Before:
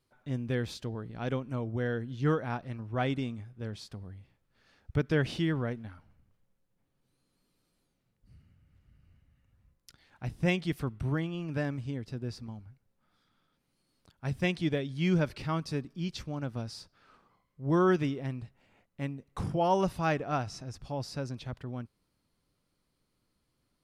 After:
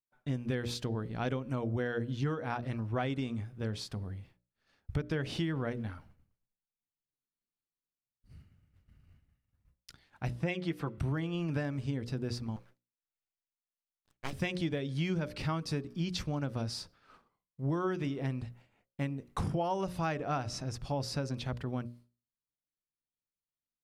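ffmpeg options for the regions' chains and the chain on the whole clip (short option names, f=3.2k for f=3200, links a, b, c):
-filter_complex "[0:a]asettb=1/sr,asplit=3[a][b][c];[a]atrim=end=10.304[d];[b]atrim=start=10.3:end=10.98,asetpts=PTS-STARTPTS,afade=t=in:d=0.004:c=qsin,afade=t=out:st=0.676:d=0.004:c=qsin,highpass=f=290:p=1,highshelf=f=4.3k:g=-11,aecho=1:1:6:0.52,atrim=end_sample=29988[e];[c]atrim=start=10.976[f];[d][e]acrossfade=d=0.004:c1=hsin:c2=qsin[g];[g][f]acrossfade=d=0.004:c1=qsin:c2=hsin,asettb=1/sr,asplit=3[h][i][j];[h]atrim=end=12.564[k];[i]atrim=start=12.56:end=14.33,asetpts=PTS-STARTPTS,afade=t=in:d=0.004:c=qsin,afade=t=out:st=1.766:d=0.004:c=qsin,highpass=340,aeval=exprs='abs(val(0))':c=same[l];[j]atrim=start=14.326[m];[k][l]acrossfade=d=0.004:c1=hsin:c2=qsin[n];[n][m]acrossfade=d=0.004:c1=qsin:c2=hsin,agate=range=-33dB:threshold=-56dB:ratio=3:detection=peak,bandreject=f=60:t=h:w=6,bandreject=f=120:t=h:w=6,bandreject=f=180:t=h:w=6,bandreject=f=240:t=h:w=6,bandreject=f=300:t=h:w=6,bandreject=f=360:t=h:w=6,bandreject=f=420:t=h:w=6,bandreject=f=480:t=h:w=6,bandreject=f=540:t=h:w=6,bandreject=f=600:t=h:w=6,acompressor=threshold=-34dB:ratio=12,volume=5dB"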